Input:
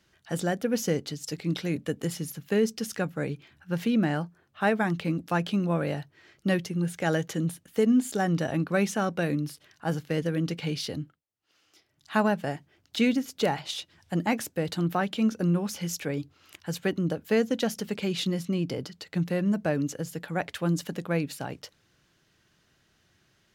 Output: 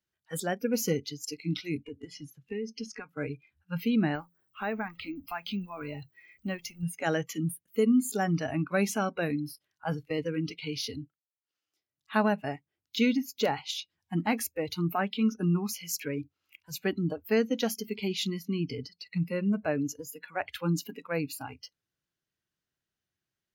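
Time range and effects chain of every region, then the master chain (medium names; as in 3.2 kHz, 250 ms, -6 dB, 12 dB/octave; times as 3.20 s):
1.83–3.09 s: compression 8:1, threshold -28 dBFS + distance through air 68 m
4.15–6.83 s: companding laws mixed up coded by mu + compression 2:1, threshold -31 dBFS
whole clip: spectral noise reduction 22 dB; treble shelf 11 kHz +11 dB; trim -1.5 dB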